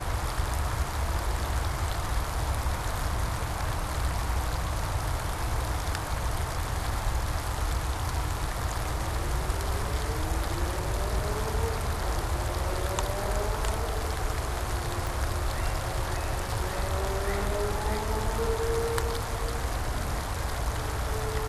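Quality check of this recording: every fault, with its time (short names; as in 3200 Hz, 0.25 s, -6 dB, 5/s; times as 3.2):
15.07 pop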